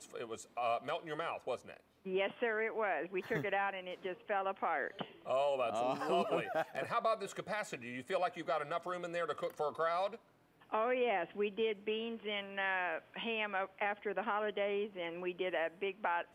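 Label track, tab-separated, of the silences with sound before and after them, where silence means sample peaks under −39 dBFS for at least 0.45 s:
10.150000	10.730000	silence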